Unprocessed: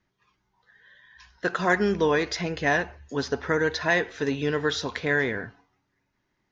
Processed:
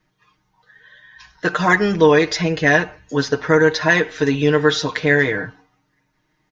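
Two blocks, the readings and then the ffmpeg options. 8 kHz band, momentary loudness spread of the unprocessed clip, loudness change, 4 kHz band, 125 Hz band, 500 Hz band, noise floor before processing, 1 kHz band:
n/a, 9 LU, +8.5 dB, +8.0 dB, +10.5 dB, +9.0 dB, -76 dBFS, +7.5 dB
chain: -af "aecho=1:1:6.5:0.79,volume=6dB"

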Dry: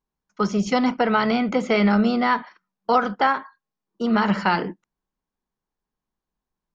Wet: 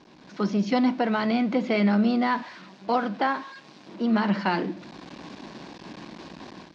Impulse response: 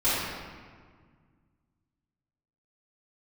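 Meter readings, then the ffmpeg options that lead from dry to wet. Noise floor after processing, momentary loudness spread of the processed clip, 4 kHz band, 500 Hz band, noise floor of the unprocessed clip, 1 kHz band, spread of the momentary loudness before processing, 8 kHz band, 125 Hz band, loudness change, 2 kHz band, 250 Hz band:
-51 dBFS, 20 LU, -4.5 dB, -4.5 dB, under -85 dBFS, -5.5 dB, 8 LU, n/a, -2.5 dB, -3.5 dB, -5.5 dB, -1.5 dB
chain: -af "aeval=exprs='val(0)+0.5*0.0224*sgn(val(0))':c=same,dynaudnorm=f=110:g=5:m=12dB,highpass=170,equalizer=f=310:t=q:w=4:g=6,equalizer=f=440:t=q:w=4:g=-6,equalizer=f=850:t=q:w=4:g=-4,equalizer=f=1.3k:t=q:w=4:g=-9,equalizer=f=2k:t=q:w=4:g=-4,equalizer=f=3.1k:t=q:w=4:g=-4,lowpass=f=4.6k:w=0.5412,lowpass=f=4.6k:w=1.3066,volume=-8.5dB"

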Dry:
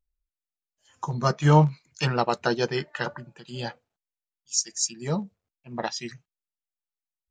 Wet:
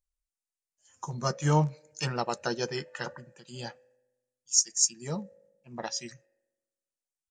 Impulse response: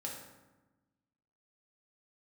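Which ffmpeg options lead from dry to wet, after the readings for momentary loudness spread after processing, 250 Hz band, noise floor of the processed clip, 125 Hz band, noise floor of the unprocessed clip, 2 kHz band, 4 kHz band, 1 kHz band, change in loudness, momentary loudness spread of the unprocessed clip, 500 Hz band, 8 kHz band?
18 LU, -7.0 dB, under -85 dBFS, -7.0 dB, under -85 dBFS, -6.5 dB, -2.0 dB, -7.0 dB, -3.5 dB, 18 LU, -6.5 dB, +2.5 dB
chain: -filter_complex "[0:a]aresample=22050,aresample=44100,aexciter=amount=4.5:drive=2.8:freq=5.4k,asplit=2[a][b];[b]asplit=3[c][d][e];[c]bandpass=f=530:t=q:w=8,volume=0dB[f];[d]bandpass=f=1.84k:t=q:w=8,volume=-6dB[g];[e]bandpass=f=2.48k:t=q:w=8,volume=-9dB[h];[f][g][h]amix=inputs=3:normalize=0[i];[1:a]atrim=start_sample=2205[j];[i][j]afir=irnorm=-1:irlink=0,volume=-9dB[k];[a][k]amix=inputs=2:normalize=0,volume=-7dB"

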